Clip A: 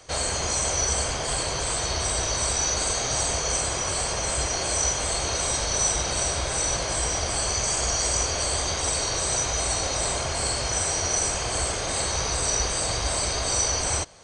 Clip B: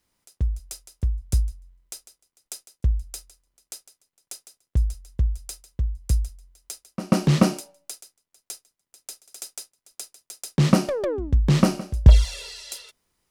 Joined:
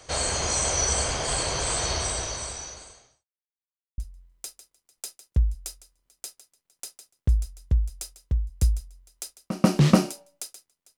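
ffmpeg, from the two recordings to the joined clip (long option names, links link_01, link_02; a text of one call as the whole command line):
ffmpeg -i cue0.wav -i cue1.wav -filter_complex "[0:a]apad=whole_dur=10.97,atrim=end=10.97,asplit=2[link_01][link_02];[link_01]atrim=end=3.26,asetpts=PTS-STARTPTS,afade=type=out:start_time=1.91:duration=1.35:curve=qua[link_03];[link_02]atrim=start=3.26:end=3.98,asetpts=PTS-STARTPTS,volume=0[link_04];[1:a]atrim=start=1.46:end=8.45,asetpts=PTS-STARTPTS,afade=type=in:duration=0.004:curve=hsin[link_05];[link_03][link_04][link_05]concat=n=3:v=0:a=1" out.wav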